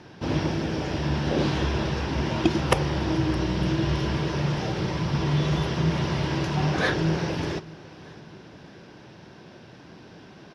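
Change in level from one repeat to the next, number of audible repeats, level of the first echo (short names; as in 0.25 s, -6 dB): -8.0 dB, 2, -21.0 dB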